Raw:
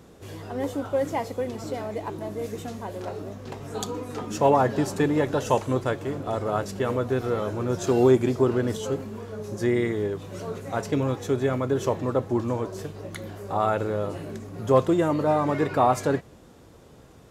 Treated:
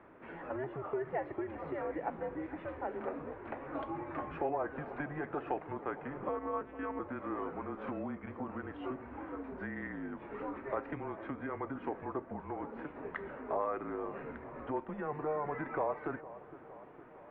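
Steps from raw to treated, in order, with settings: compression 6:1, threshold -30 dBFS, peak gain reduction 15.5 dB; peaking EQ 340 Hz -11.5 dB 1.2 oct; 6.21–7.00 s: monotone LPC vocoder at 8 kHz 210 Hz; bucket-brigade echo 460 ms, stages 4096, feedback 67%, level -16 dB; mistuned SSB -150 Hz 310–2300 Hz; trim +2 dB

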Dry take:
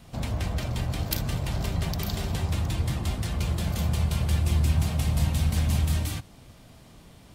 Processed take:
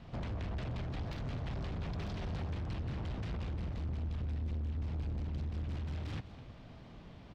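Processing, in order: 3.53–5.64 s: bass shelf 98 Hz +9.5 dB; compression 6:1, threshold -30 dBFS, peak gain reduction 16 dB; hard clipper -34 dBFS, distortion -9 dB; distance through air 210 m; delay 209 ms -16 dB; loudspeaker Doppler distortion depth 0.43 ms; trim -1 dB

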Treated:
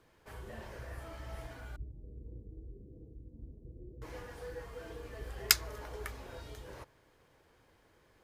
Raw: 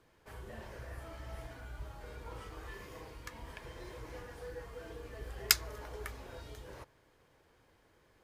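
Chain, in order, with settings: 1.76–4.02 s: inverse Chebyshev low-pass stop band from 1.2 kHz, stop band 60 dB; trim +1 dB

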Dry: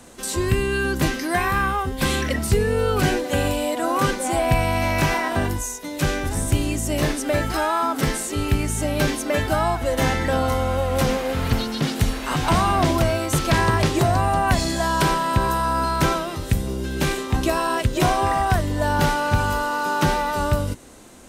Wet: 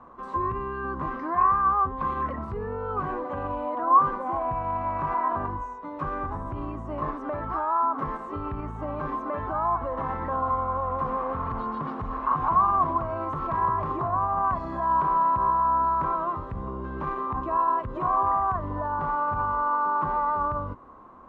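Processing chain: peak limiter -17 dBFS, peak gain reduction 9.5 dB; resonant low-pass 1.1 kHz, resonance Q 13; trim -8 dB

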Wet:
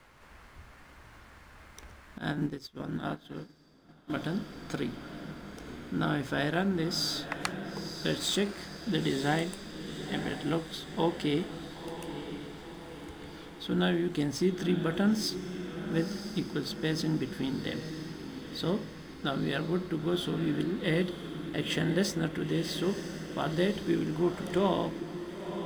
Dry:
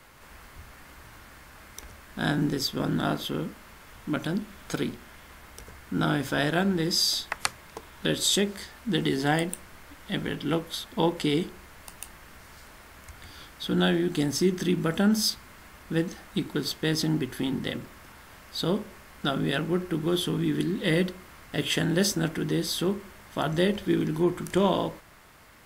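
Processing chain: median filter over 3 samples; treble shelf 4.7 kHz -5.5 dB; echo that smears into a reverb 977 ms, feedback 54%, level -9.5 dB; 2.18–4.10 s: upward expansion 2.5:1, over -36 dBFS; trim -4 dB

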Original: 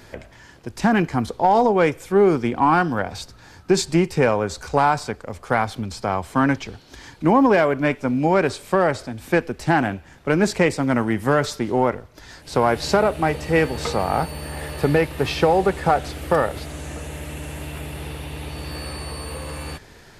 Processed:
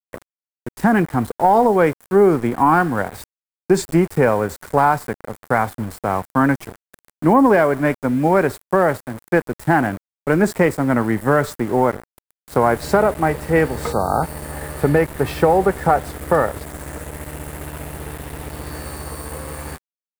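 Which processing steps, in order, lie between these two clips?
small samples zeroed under -31 dBFS; time-frequency box 13.93–14.23 s, 1.6–3.6 kHz -23 dB; high-order bell 4 kHz -9 dB; trim +2.5 dB

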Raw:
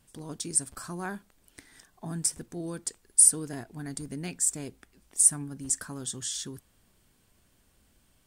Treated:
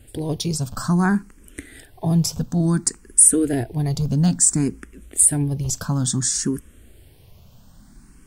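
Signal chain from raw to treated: bass shelf 380 Hz +10.5 dB; loudness maximiser +14 dB; barber-pole phaser +0.58 Hz; trim -1 dB

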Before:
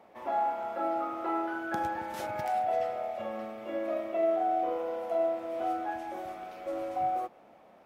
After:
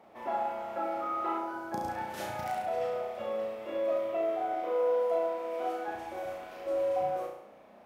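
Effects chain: 1.38–1.89 s: high-order bell 2.2 kHz -9 dB; 4.53–5.88 s: high-pass 230 Hz 12 dB/octave; flutter echo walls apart 5.9 m, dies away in 0.67 s; trim -1 dB

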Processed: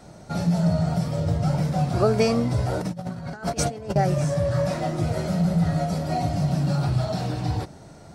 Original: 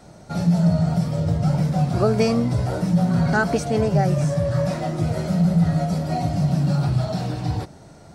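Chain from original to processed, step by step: dynamic bell 180 Hz, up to -4 dB, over -27 dBFS, Q 1.2; 2.81–3.96 s: compressor with a negative ratio -28 dBFS, ratio -0.5

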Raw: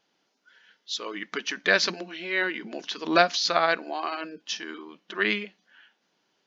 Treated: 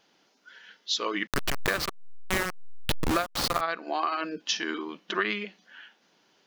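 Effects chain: 1.27–3.61 s: send-on-delta sampling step -20 dBFS; dynamic bell 1.2 kHz, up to +8 dB, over -43 dBFS, Q 4.5; compression 12:1, threshold -31 dBFS, peak gain reduction 20 dB; trim +7 dB

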